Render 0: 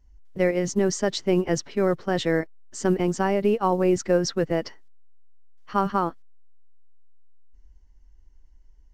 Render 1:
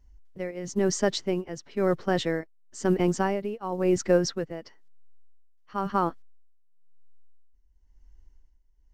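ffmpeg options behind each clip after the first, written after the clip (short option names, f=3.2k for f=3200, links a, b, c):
-af "tremolo=f=0.98:d=0.78"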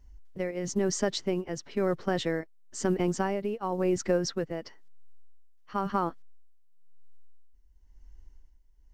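-af "acompressor=threshold=-31dB:ratio=2,volume=3dB"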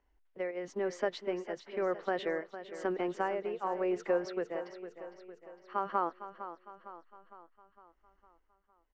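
-filter_complex "[0:a]acrossover=split=330 3100:gain=0.0794 1 0.0794[a][b][c];[a][b][c]amix=inputs=3:normalize=0,asplit=2[d][e];[e]aecho=0:1:457|914|1371|1828|2285|2742:0.251|0.133|0.0706|0.0374|0.0198|0.0105[f];[d][f]amix=inputs=2:normalize=0,volume=-1.5dB"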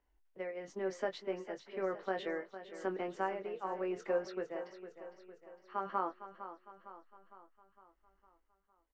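-filter_complex "[0:a]asplit=2[a][b];[b]adelay=21,volume=-7.5dB[c];[a][c]amix=inputs=2:normalize=0,volume=-4.5dB"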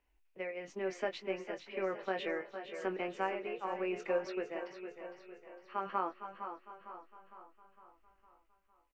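-filter_complex "[0:a]equalizer=f=2.5k:w=3.3:g=12,asplit=2[a][b];[b]adelay=471,lowpass=f=4.5k:p=1,volume=-10.5dB,asplit=2[c][d];[d]adelay=471,lowpass=f=4.5k:p=1,volume=0.45,asplit=2[e][f];[f]adelay=471,lowpass=f=4.5k:p=1,volume=0.45,asplit=2[g][h];[h]adelay=471,lowpass=f=4.5k:p=1,volume=0.45,asplit=2[i][j];[j]adelay=471,lowpass=f=4.5k:p=1,volume=0.45[k];[c][e][g][i][k]amix=inputs=5:normalize=0[l];[a][l]amix=inputs=2:normalize=0"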